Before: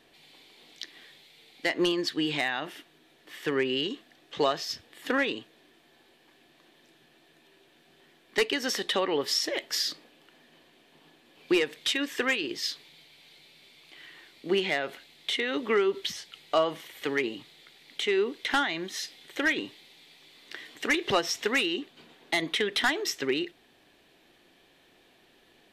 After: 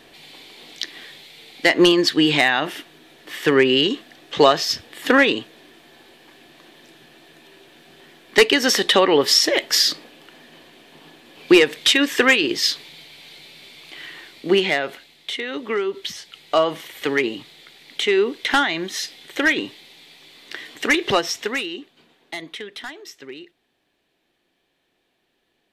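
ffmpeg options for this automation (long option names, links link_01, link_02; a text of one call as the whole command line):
ffmpeg -i in.wav -af "volume=18.5dB,afade=type=out:start_time=14.06:duration=1.24:silence=0.298538,afade=type=in:start_time=15.9:duration=0.91:silence=0.473151,afade=type=out:start_time=20.99:duration=0.66:silence=0.375837,afade=type=out:start_time=21.65:duration=1.24:silence=0.375837" out.wav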